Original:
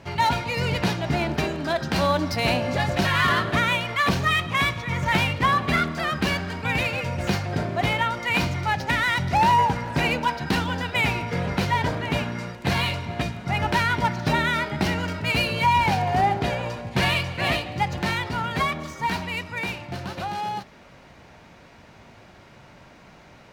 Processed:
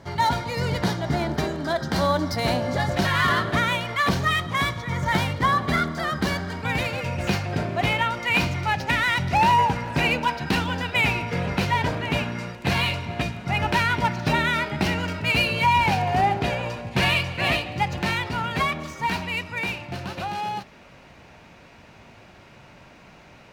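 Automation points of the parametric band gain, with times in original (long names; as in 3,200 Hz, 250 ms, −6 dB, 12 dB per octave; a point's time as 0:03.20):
parametric band 2,600 Hz 0.25 octaves
−14.5 dB
from 0:02.91 −6.5 dB
from 0:04.39 −14 dB
from 0:06.52 −6 dB
from 0:07.04 +5 dB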